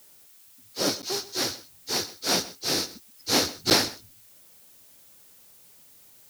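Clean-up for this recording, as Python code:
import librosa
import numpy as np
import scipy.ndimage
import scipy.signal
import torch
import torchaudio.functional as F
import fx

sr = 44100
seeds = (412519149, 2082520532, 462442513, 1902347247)

y = fx.fix_interpolate(x, sr, at_s=(1.02, 3.7), length_ms=9.2)
y = fx.noise_reduce(y, sr, print_start_s=0.08, print_end_s=0.58, reduce_db=19.0)
y = fx.fix_echo_inverse(y, sr, delay_ms=128, level_db=-18.0)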